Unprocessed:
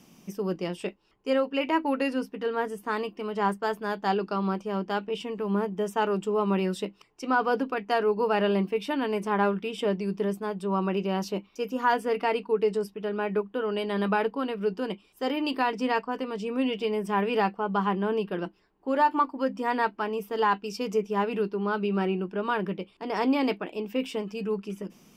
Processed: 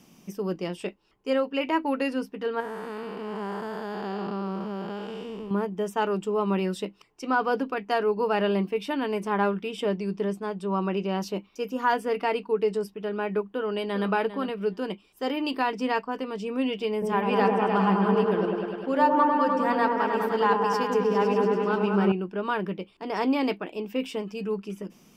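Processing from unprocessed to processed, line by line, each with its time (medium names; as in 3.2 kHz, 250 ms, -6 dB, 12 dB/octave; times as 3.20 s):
2.60–5.51 s: spectral blur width 370 ms
10.01–11.21 s: low-pass 9.8 kHz
13.51–14.09 s: echo throw 400 ms, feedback 10%, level -12 dB
16.92–22.12 s: delay with an opening low-pass 101 ms, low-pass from 750 Hz, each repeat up 1 oct, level 0 dB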